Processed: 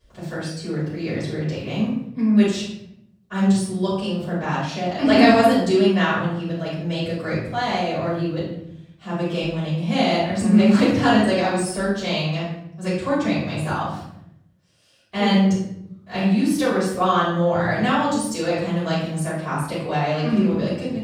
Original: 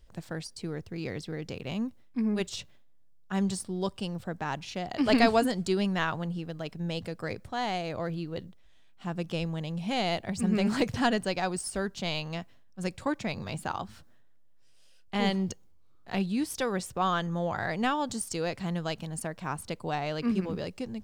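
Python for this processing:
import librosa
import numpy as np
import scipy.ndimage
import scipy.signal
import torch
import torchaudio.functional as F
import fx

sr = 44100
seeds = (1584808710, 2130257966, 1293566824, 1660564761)

y = scipy.signal.sosfilt(scipy.signal.butter(2, 81.0, 'highpass', fs=sr, output='sos'), x)
y = fx.high_shelf(y, sr, hz=9800.0, db=-4.0)
y = fx.room_shoebox(y, sr, seeds[0], volume_m3=180.0, walls='mixed', distance_m=5.6)
y = y * librosa.db_to_amplitude(-6.0)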